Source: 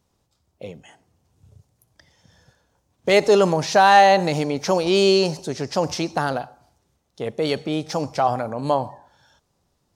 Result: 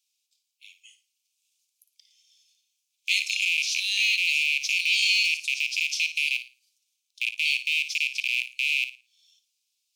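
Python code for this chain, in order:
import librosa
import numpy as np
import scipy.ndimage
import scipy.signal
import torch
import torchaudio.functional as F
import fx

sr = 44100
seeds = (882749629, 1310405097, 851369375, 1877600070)

y = fx.rattle_buzz(x, sr, strikes_db=-29.0, level_db=-10.0)
y = scipy.signal.sosfilt(scipy.signal.butter(16, 2300.0, 'highpass', fs=sr, output='sos'), y)
y = fx.room_flutter(y, sr, wall_m=9.6, rt60_s=0.3)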